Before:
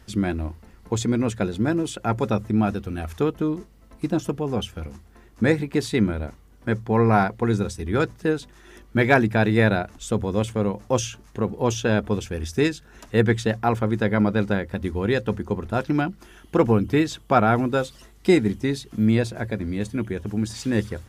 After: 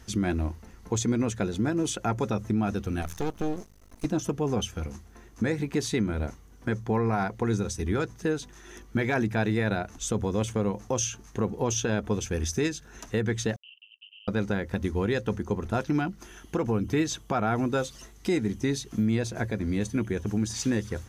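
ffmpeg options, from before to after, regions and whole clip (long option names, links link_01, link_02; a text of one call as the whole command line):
ffmpeg -i in.wav -filter_complex "[0:a]asettb=1/sr,asplit=3[link_01][link_02][link_03];[link_01]atrim=end=3.024[link_04];[link_02]atrim=start=3.02:end=4.05,asetpts=PTS-STARTPTS,afade=type=in:duration=0.004:curve=qsin,afade=type=out:start_time=1.026:duration=0.004:curve=qsin,highshelf=frequency=4300:gain=6,aeval=exprs='max(val(0),0)':channel_layout=same[link_05];[link_03]atrim=start=4.046[link_06];[link_04][link_05]acrossfade=duration=0.004:curve1=hsin:curve2=qsin[link_07];[link_07][link_06]acrossfade=duration=0.004:curve1=qsin:curve2=hsin,asettb=1/sr,asplit=3[link_08][link_09][link_10];[link_08]atrim=end=13.564[link_11];[link_09]atrim=start=13.56:end=14.28,asetpts=PTS-STARTPTS,afade=type=in:duration=0.004:curve=qsin,afade=type=out:start_time=0.716:duration=0.004:curve=qsin,acrusher=bits=3:mix=0:aa=0.5,asuperpass=centerf=2900:order=8:qfactor=6.6,acompressor=threshold=-50dB:ratio=2:attack=3.2:release=140:knee=1:detection=peak[link_12];[link_10]atrim=start=14.276[link_13];[link_11][link_12]acrossfade=duration=0.004:curve1=hsin:curve2=qsin[link_14];[link_14][link_13]acrossfade=duration=0.004:curve1=qsin:curve2=hsin,equalizer=frequency=6200:width_type=o:width=0.21:gain=10.5,bandreject=frequency=580:width=14,alimiter=limit=-17dB:level=0:latency=1:release=180" out.wav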